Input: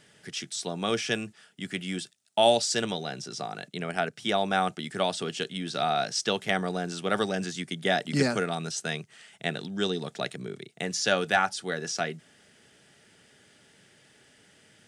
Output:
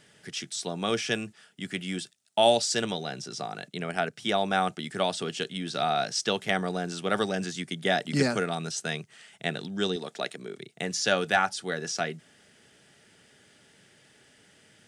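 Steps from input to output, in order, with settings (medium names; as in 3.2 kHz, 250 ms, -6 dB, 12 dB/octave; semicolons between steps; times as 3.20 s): 9.96–10.59 s: high-pass 250 Hz 12 dB/octave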